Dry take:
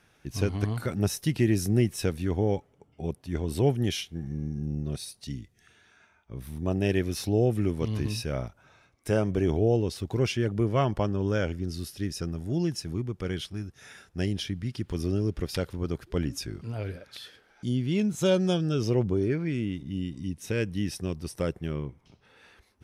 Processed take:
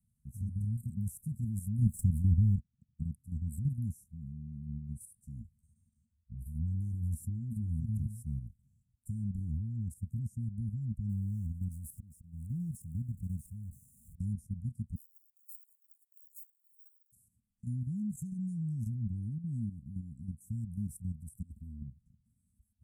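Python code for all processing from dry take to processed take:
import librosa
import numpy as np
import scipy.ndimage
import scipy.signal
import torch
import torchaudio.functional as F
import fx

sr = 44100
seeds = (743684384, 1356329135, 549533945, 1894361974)

y = fx.chain(x, sr, fx.leveller(passes=3),
    fx.high_shelf(hz=3200.0, db=-8.5), at=(1.82, 3.03))
y = fx.chain(y, sr, fx.low_shelf(hz=160.0, db=4.0),
    fx.doubler(ms=13.0, db=-6.5),
    fx.doppler_dist(depth_ms=0.14), at=(5.39, 7.8))
y = fx.chain(y, sr, fx.zero_step(step_db=-40.5),
    fx.auto_swell(attack_ms=316.0), at=(11.09, 14.2))
y = fx.chain(y, sr, fx.brickwall_highpass(low_hz=2100.0),
    fx.resample_bad(factor=2, down='filtered', up='zero_stuff'), at=(14.95, 17.12))
y = fx.chain(y, sr, fx.comb(ms=3.5, depth=0.72),
    fx.over_compress(threshold_db=-34.0, ratio=-0.5), at=(21.42, 21.83))
y = fx.level_steps(y, sr, step_db=10)
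y = scipy.signal.sosfilt(scipy.signal.cheby1(5, 1.0, [230.0, 7600.0], 'bandstop', fs=sr, output='sos'), y)
y = fx.peak_eq(y, sr, hz=71.0, db=5.5, octaves=1.4)
y = F.gain(torch.from_numpy(y), -4.0).numpy()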